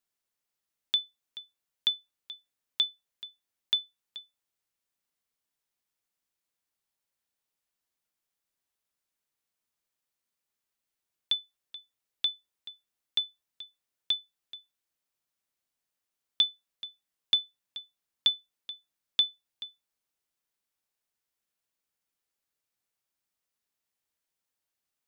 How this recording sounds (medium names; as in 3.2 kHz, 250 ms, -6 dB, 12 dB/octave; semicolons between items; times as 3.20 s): noise floor -87 dBFS; spectral tilt -1.0 dB/octave